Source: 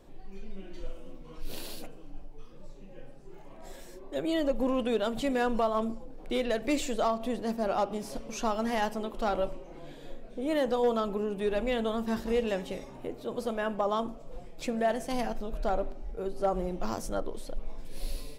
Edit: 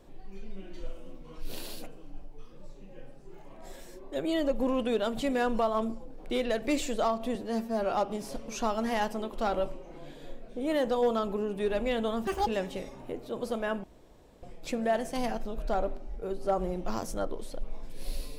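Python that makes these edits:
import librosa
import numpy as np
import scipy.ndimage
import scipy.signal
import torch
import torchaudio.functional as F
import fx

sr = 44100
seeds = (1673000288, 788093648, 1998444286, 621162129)

y = fx.edit(x, sr, fx.stretch_span(start_s=7.35, length_s=0.38, factor=1.5),
    fx.speed_span(start_s=12.08, length_s=0.34, speed=1.72),
    fx.room_tone_fill(start_s=13.79, length_s=0.59), tone=tone)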